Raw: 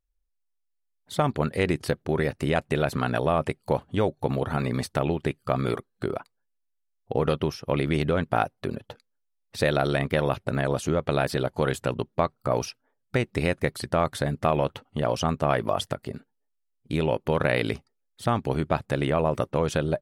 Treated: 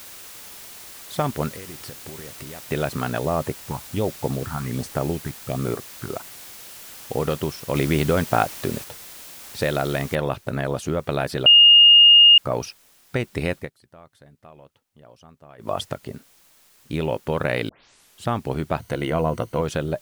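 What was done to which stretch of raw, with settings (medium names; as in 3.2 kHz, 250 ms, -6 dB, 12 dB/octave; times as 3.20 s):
1.51–2.64 s: compression 16:1, threshold -34 dBFS
3.22–6.09 s: phase shifter stages 4, 1.3 Hz, lowest notch 450–4600 Hz
7.75–8.84 s: gain +4 dB
10.15 s: noise floor step -41 dB -56 dB
11.46–12.38 s: bleep 2.84 kHz -7.5 dBFS
13.56–15.72 s: dip -24 dB, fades 0.14 s
17.69 s: tape start 0.58 s
18.79–19.61 s: rippled EQ curve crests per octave 1.9, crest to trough 8 dB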